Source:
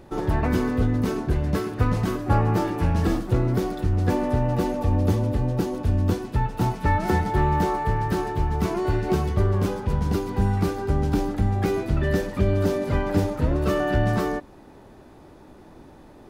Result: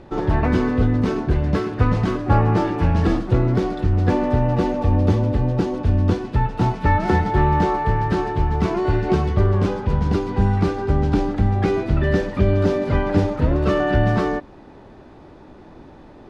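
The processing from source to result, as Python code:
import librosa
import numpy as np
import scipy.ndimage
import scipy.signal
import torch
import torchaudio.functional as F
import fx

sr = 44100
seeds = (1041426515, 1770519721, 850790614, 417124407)

y = scipy.signal.sosfilt(scipy.signal.butter(2, 4600.0, 'lowpass', fs=sr, output='sos'), x)
y = F.gain(torch.from_numpy(y), 4.0).numpy()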